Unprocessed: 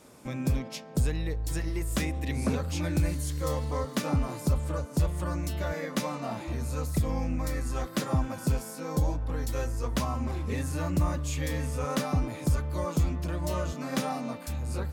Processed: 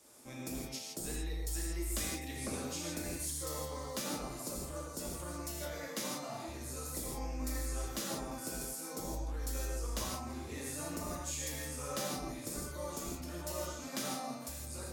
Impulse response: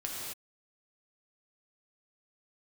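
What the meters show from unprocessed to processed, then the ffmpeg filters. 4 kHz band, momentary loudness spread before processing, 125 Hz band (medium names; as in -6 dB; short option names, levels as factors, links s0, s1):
-2.5 dB, 4 LU, -15.5 dB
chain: -filter_complex "[0:a]bass=f=250:g=-5,treble=f=4000:g=10,acrossover=split=200|1500[s0][s1][s2];[s0]aeval=exprs='0.0237*(abs(mod(val(0)/0.0237+3,4)-2)-1)':c=same[s3];[s3][s1][s2]amix=inputs=3:normalize=0[s4];[1:a]atrim=start_sample=2205,afade=t=out:st=0.24:d=0.01,atrim=end_sample=11025,asetrate=48510,aresample=44100[s5];[s4][s5]afir=irnorm=-1:irlink=0,volume=0.376"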